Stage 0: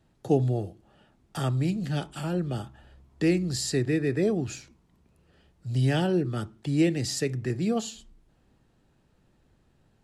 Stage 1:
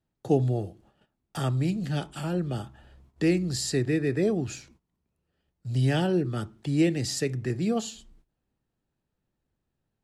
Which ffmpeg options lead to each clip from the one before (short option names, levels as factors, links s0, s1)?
-af "agate=range=0.158:threshold=0.00141:ratio=16:detection=peak"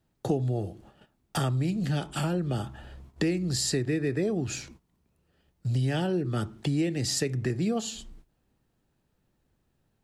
-af "acompressor=threshold=0.02:ratio=4,volume=2.51"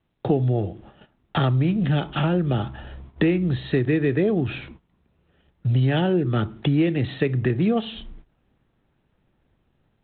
-af "dynaudnorm=f=170:g=3:m=1.68,volume=1.33" -ar 8000 -c:a adpcm_g726 -b:a 32k